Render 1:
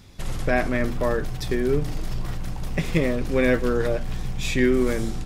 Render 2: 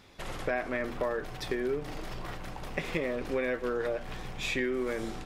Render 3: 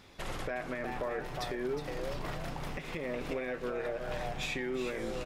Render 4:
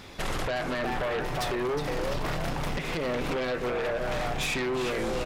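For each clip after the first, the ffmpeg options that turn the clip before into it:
-af "bass=f=250:g=-14,treble=f=4000:g=-9,acompressor=threshold=0.0398:ratio=5"
-filter_complex "[0:a]asplit=5[s0][s1][s2][s3][s4];[s1]adelay=362,afreqshift=130,volume=0.398[s5];[s2]adelay=724,afreqshift=260,volume=0.132[s6];[s3]adelay=1086,afreqshift=390,volume=0.0432[s7];[s4]adelay=1448,afreqshift=520,volume=0.0143[s8];[s0][s5][s6][s7][s8]amix=inputs=5:normalize=0,alimiter=level_in=1.26:limit=0.0631:level=0:latency=1:release=264,volume=0.794"
-af "aeval=exprs='0.0531*sin(PI/2*2.24*val(0)/0.0531)':c=same"

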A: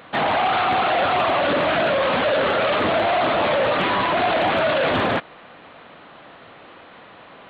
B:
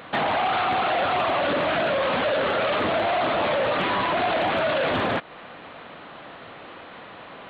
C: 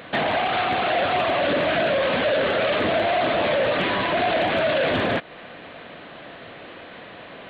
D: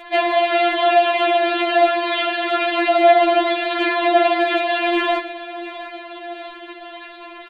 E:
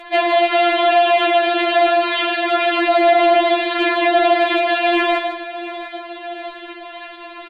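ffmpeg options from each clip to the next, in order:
-af "acompressor=threshold=0.0398:ratio=2,volume=1.33"
-af "superequalizer=9b=0.562:10b=0.562,volume=1.33"
-af "aecho=1:1:697|1394|2091|2788|3485:0.178|0.0978|0.0538|0.0296|0.0163,areverse,acompressor=mode=upward:threshold=0.00708:ratio=2.5,areverse,afftfilt=real='re*4*eq(mod(b,16),0)':imag='im*4*eq(mod(b,16),0)':win_size=2048:overlap=0.75,volume=2"
-filter_complex "[0:a]asplit=2[s0][s1];[s1]aecho=0:1:155:0.447[s2];[s0][s2]amix=inputs=2:normalize=0,apsyclip=2.82,aresample=32000,aresample=44100,volume=0.422"

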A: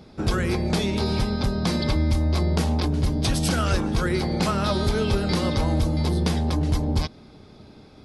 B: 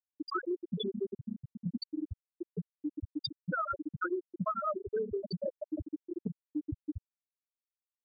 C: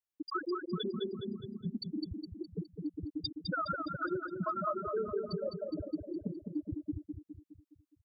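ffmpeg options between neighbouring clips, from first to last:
-af "highpass=f=570:p=1,afftfilt=real='re*gte(hypot(re,im),0.224)':imag='im*gte(hypot(re,im),0.224)':win_size=1024:overlap=0.75,acompressor=threshold=0.0126:ratio=6,volume=2.24"
-af "aecho=1:1:207|414|621|828|1035|1242:0.531|0.26|0.127|0.0625|0.0306|0.015,volume=0.841"

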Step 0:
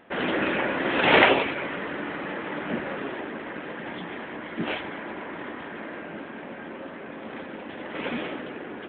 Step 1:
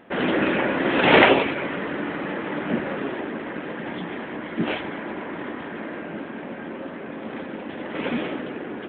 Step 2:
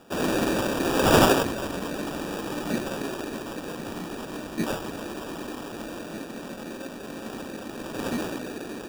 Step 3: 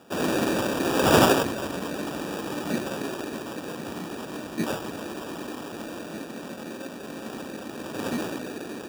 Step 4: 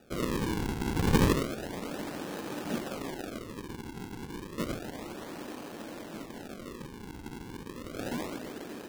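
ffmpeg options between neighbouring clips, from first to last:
-af "equalizer=f=210:w=0.48:g=4.5,volume=1.19"
-af "acrusher=samples=21:mix=1:aa=0.000001,volume=0.708"
-af "highpass=79"
-af "acrusher=samples=41:mix=1:aa=0.000001:lfo=1:lforange=65.6:lforate=0.31,volume=0.501"

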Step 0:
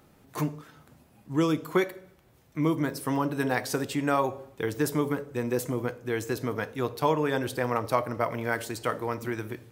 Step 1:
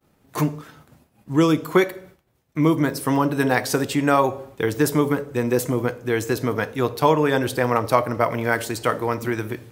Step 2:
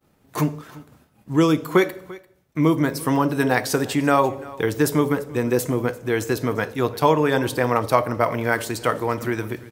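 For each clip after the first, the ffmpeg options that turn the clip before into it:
-af "agate=range=0.0224:threshold=0.00316:ratio=3:detection=peak,volume=2.37"
-af "aecho=1:1:343:0.0944"

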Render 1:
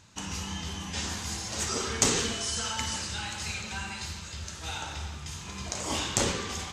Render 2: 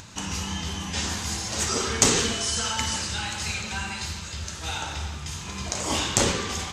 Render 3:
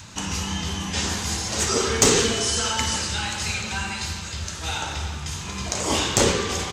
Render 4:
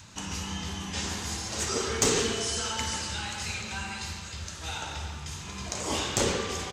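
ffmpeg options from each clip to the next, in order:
-af "acompressor=mode=upward:threshold=0.00794:ratio=2.5,volume=1.78"
-filter_complex "[0:a]acontrast=49,asplit=2[s0][s1];[s1]adelay=349.9,volume=0.158,highshelf=f=4000:g=-7.87[s2];[s0][s2]amix=inputs=2:normalize=0,adynamicequalizer=threshold=0.0158:dfrequency=430:dqfactor=2.5:tfrequency=430:tqfactor=2.5:attack=5:release=100:ratio=0.375:range=2.5:mode=boostabove:tftype=bell,volume=0.708"
-filter_complex "[0:a]asplit=2[s0][s1];[s1]adelay=140,highpass=300,lowpass=3400,asoftclip=type=hard:threshold=0.237,volume=0.398[s2];[s0][s2]amix=inputs=2:normalize=0,volume=0.422"

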